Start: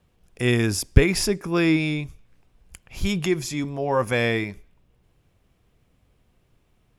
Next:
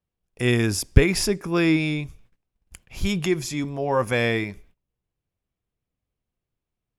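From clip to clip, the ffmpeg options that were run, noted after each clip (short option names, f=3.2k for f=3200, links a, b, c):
-af "agate=range=-21dB:threshold=-51dB:ratio=16:detection=peak"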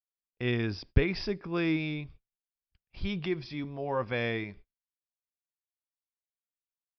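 -af "aresample=11025,aresample=44100,agate=range=-28dB:threshold=-41dB:ratio=16:detection=peak,volume=-9dB"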